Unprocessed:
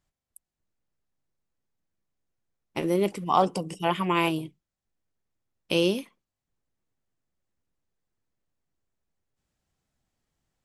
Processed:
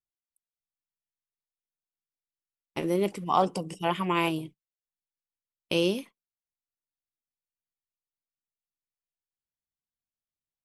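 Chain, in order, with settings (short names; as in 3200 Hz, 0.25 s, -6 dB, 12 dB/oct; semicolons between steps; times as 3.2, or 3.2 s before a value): gate -42 dBFS, range -22 dB; gain -2 dB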